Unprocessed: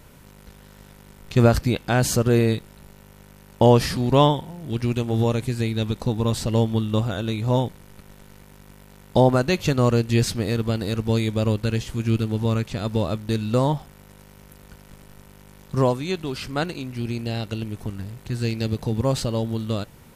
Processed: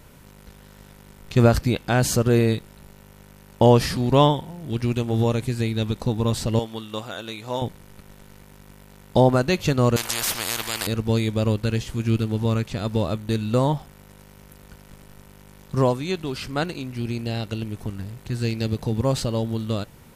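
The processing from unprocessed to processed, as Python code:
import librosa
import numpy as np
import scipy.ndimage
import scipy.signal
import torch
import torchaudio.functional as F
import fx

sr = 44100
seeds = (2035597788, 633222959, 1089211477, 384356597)

y = fx.highpass(x, sr, hz=800.0, slope=6, at=(6.59, 7.62))
y = fx.spectral_comp(y, sr, ratio=10.0, at=(9.96, 10.87))
y = fx.notch(y, sr, hz=5200.0, q=7.5, at=(13.13, 13.73))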